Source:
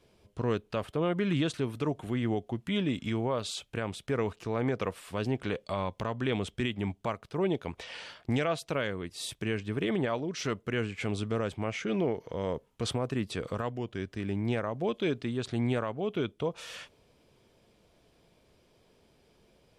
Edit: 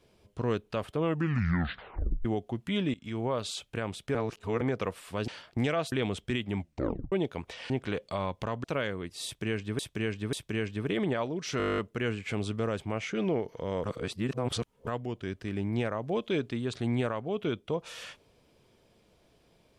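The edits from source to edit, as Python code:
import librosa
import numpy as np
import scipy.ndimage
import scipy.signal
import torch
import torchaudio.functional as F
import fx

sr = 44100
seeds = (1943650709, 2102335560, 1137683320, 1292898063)

y = fx.edit(x, sr, fx.tape_stop(start_s=1.0, length_s=1.25),
    fx.fade_in_from(start_s=2.94, length_s=0.33, floor_db=-22.0),
    fx.reverse_span(start_s=4.15, length_s=0.46),
    fx.swap(start_s=5.28, length_s=0.94, other_s=8.0, other_length_s=0.64),
    fx.tape_stop(start_s=6.89, length_s=0.53),
    fx.repeat(start_s=9.25, length_s=0.54, count=3),
    fx.stutter(start_s=10.5, slice_s=0.02, count=11),
    fx.reverse_span(start_s=12.56, length_s=1.03), tone=tone)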